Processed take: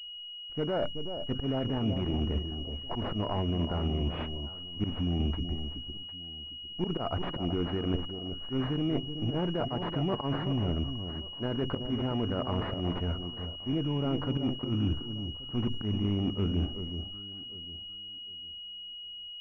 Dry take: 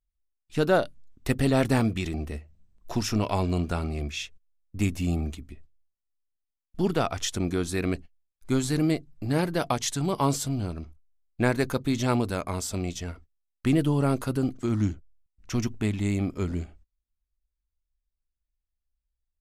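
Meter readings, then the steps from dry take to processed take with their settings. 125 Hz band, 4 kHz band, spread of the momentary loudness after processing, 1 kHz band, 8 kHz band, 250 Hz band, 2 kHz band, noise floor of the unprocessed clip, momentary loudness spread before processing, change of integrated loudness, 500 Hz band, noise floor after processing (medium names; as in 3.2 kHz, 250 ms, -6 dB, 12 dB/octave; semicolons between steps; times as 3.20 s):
-3.5 dB, +5.0 dB, 10 LU, -6.5 dB, under -30 dB, -4.5 dB, -12.0 dB, -84 dBFS, 12 LU, -5.5 dB, -5.5 dB, -43 dBFS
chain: self-modulated delay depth 0.095 ms; slow attack 114 ms; peak limiter -19.5 dBFS, peak gain reduction 9.5 dB; reverse; compression 6:1, threshold -35 dBFS, peak gain reduction 11 dB; reverse; overload inside the chain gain 30 dB; on a send: echo whose repeats swap between lows and highs 377 ms, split 1.1 kHz, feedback 51%, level -8 dB; on the sum: class-D stage that switches slowly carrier 2.9 kHz; trim +8 dB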